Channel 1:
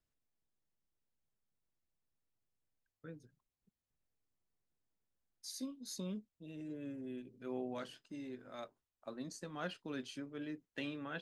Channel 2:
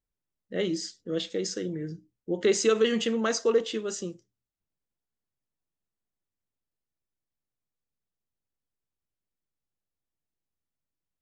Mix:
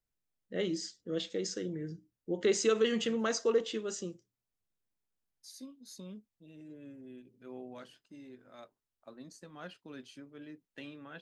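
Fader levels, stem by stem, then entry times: -4.5 dB, -5.0 dB; 0.00 s, 0.00 s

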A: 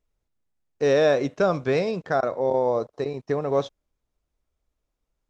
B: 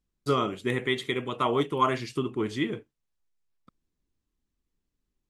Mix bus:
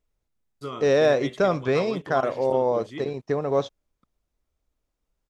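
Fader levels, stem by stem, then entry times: 0.0 dB, -9.5 dB; 0.00 s, 0.35 s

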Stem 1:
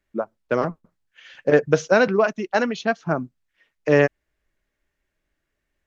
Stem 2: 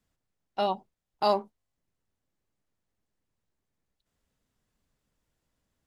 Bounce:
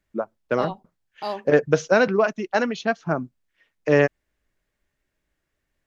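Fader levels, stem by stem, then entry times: -1.0 dB, -5.0 dB; 0.00 s, 0.00 s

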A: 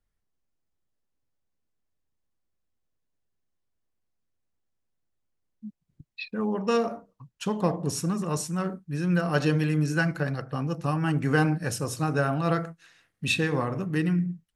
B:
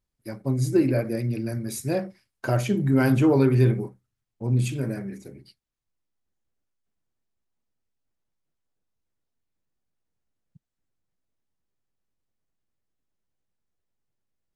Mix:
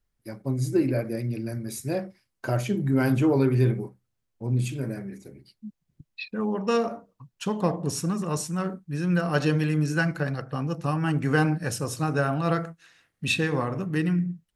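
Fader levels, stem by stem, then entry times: +0.5 dB, -2.5 dB; 0.00 s, 0.00 s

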